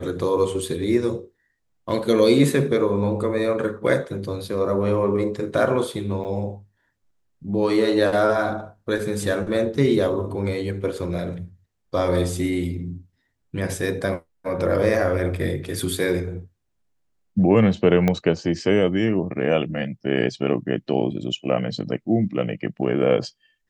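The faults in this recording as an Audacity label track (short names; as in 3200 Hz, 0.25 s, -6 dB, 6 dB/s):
6.240000	6.250000	gap 8.9 ms
18.080000	18.080000	pop -9 dBFS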